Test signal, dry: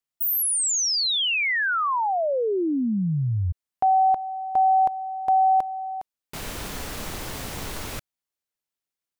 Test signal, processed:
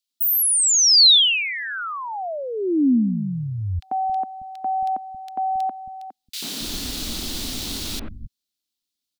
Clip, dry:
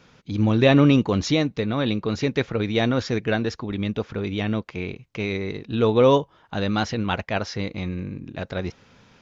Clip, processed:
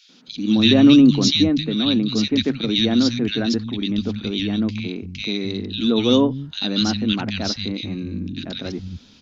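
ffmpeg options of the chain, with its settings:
-filter_complex "[0:a]equalizer=f=125:t=o:w=1:g=-7,equalizer=f=250:t=o:w=1:g=9,equalizer=f=500:t=o:w=1:g=-9,equalizer=f=1k:t=o:w=1:g=-8,equalizer=f=2k:t=o:w=1:g=-5,equalizer=f=4k:t=o:w=1:g=10,acrossover=split=170|1800[a][b][c];[b]adelay=90[d];[a]adelay=270[e];[e][d][c]amix=inputs=3:normalize=0,volume=4dB"

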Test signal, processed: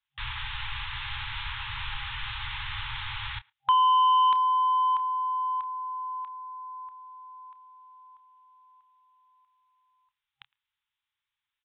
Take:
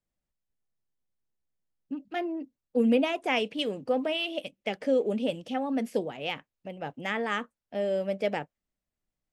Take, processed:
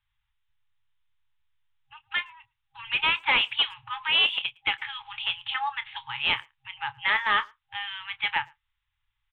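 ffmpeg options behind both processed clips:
-filter_complex "[0:a]afftfilt=real='re*(1-between(b*sr/4096,130,800))':imag='im*(1-between(b*sr/4096,130,800))':win_size=4096:overlap=0.75,highshelf=f=2.3k:g=10.5,aresample=8000,asoftclip=type=tanh:threshold=-24.5dB,aresample=44100,asplit=2[a][b];[b]adelay=28,volume=-14dB[c];[a][c]amix=inputs=2:normalize=0,asplit=2[d][e];[e]adelay=110,highpass=300,lowpass=3.4k,asoftclip=type=hard:threshold=-28dB,volume=-28dB[f];[d][f]amix=inputs=2:normalize=0,volume=8.5dB"

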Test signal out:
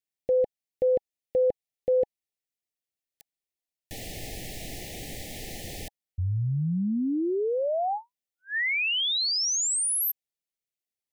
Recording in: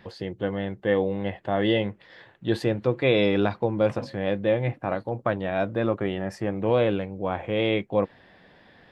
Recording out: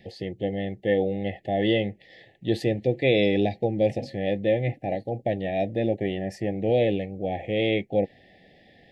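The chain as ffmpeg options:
-af "asuperstop=centerf=1200:order=20:qfactor=1.3"

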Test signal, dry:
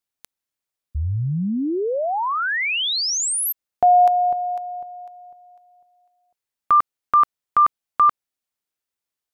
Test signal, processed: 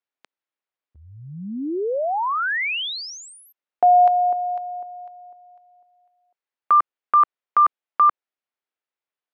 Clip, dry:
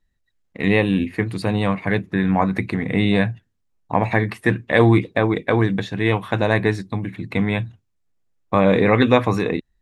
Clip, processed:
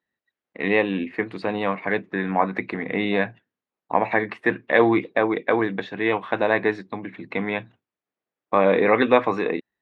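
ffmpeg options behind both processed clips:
-af "highpass=320,lowpass=2.8k"

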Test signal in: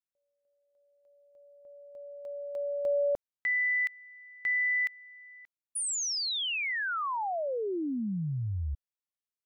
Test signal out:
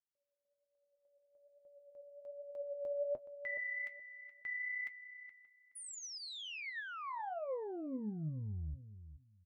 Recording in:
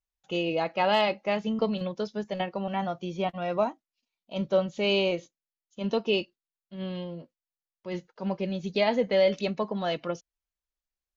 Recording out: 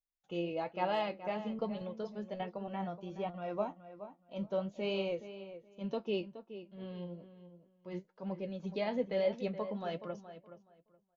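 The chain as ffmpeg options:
-filter_complex "[0:a]highshelf=f=2k:g=-8,flanger=delay=5.4:depth=6.6:regen=55:speed=1.2:shape=triangular,asplit=2[a][b];[b]adelay=422,lowpass=f=2.6k:p=1,volume=-12dB,asplit=2[c][d];[d]adelay=422,lowpass=f=2.6k:p=1,volume=0.2,asplit=2[e][f];[f]adelay=422,lowpass=f=2.6k:p=1,volume=0.2[g];[a][c][e][g]amix=inputs=4:normalize=0,volume=-4.5dB"

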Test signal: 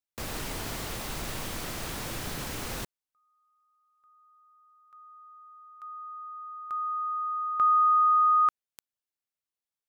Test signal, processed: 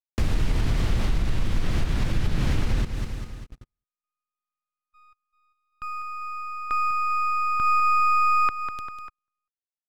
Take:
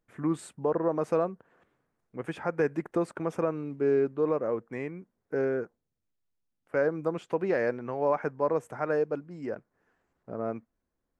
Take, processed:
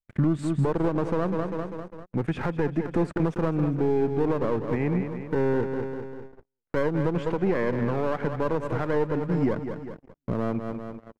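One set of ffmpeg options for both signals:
-filter_complex "[0:a]aemphasis=mode=reproduction:type=bsi,aecho=1:1:198|396|594|792|990:0.237|0.123|0.0641|0.0333|0.0173,asplit=2[a][b];[b]acompressor=threshold=-33dB:ratio=6:release=193:detection=rms,volume=-1dB[c];[a][c]amix=inputs=2:normalize=0,alimiter=limit=-21dB:level=0:latency=1:release=217,acrossover=split=360|1700[d][e][f];[e]aeval=exprs='max(val(0),0)':c=same[g];[d][g][f]amix=inputs=3:normalize=0,agate=range=-40dB:threshold=-48dB:ratio=16:release=41:detection=rms,adynamicequalizer=threshold=0.00224:dfrequency=5400:dqfactor=0.7:tfrequency=5400:tqfactor=0.7:attack=5:release=100:ratio=0.375:range=2:mode=cutabove:tftype=highshelf,volume=7.5dB"

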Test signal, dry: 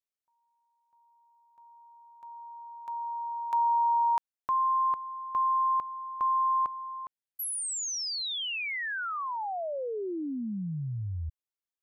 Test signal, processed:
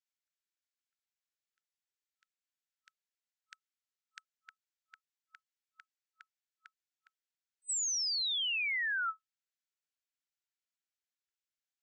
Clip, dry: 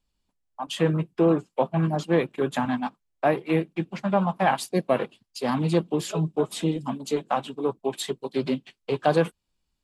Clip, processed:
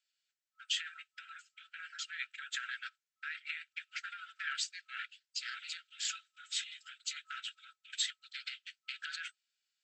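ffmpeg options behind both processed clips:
-af "alimiter=limit=-20dB:level=0:latency=1:release=16,afftfilt=real='re*between(b*sr/4096,1300,8100)':imag='im*between(b*sr/4096,1300,8100)':win_size=4096:overlap=0.75"

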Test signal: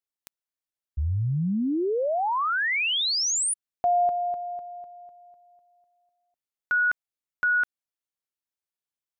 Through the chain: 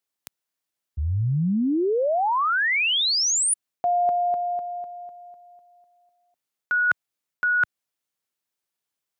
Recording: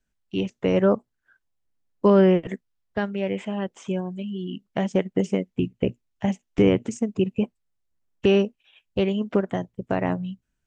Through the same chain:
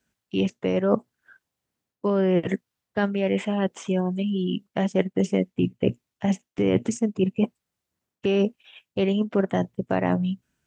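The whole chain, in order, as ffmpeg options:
-af "highpass=94,areverse,acompressor=threshold=-28dB:ratio=6:attack=31:release=381:knee=6:detection=peak,areverse,volume=7.5dB"

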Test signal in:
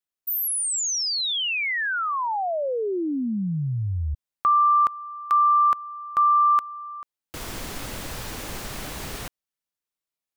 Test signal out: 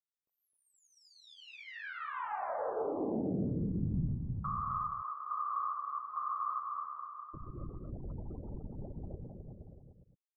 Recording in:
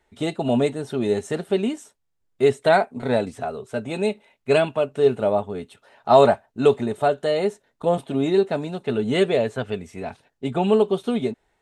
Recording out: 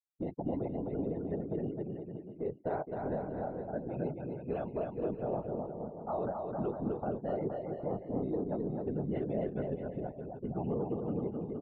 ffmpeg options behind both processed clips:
-af "afftfilt=real='re*gte(hypot(re,im),0.0562)':imag='im*gte(hypot(re,im),0.0562)':win_size=1024:overlap=0.75,afftfilt=real='hypot(re,im)*cos(2*PI*random(0))':imag='hypot(re,im)*sin(2*PI*random(1))':win_size=512:overlap=0.75,adynamicequalizer=threshold=0.00794:dfrequency=150:dqfactor=1.3:tfrequency=150:tqfactor=1.3:attack=5:release=100:ratio=0.375:range=2.5:mode=boostabove:tftype=bell,alimiter=limit=-17.5dB:level=0:latency=1:release=51,acompressor=threshold=-35dB:ratio=2:attack=0.21:release=536:knee=1:detection=rms,lowpass=1.1k,aecho=1:1:260|468|634.4|767.5|874:0.631|0.398|0.251|0.158|0.1"

